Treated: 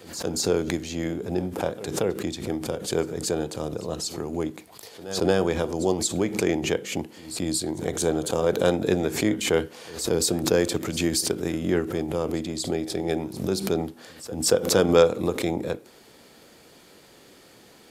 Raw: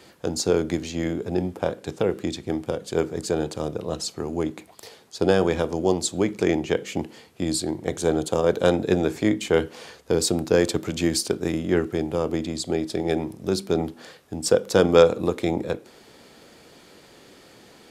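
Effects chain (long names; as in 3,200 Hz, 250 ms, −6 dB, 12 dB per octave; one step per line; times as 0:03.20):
high-shelf EQ 11,000 Hz +10 dB
echo ahead of the sound 230 ms −20 dB
background raised ahead of every attack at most 92 dB per second
level −2.5 dB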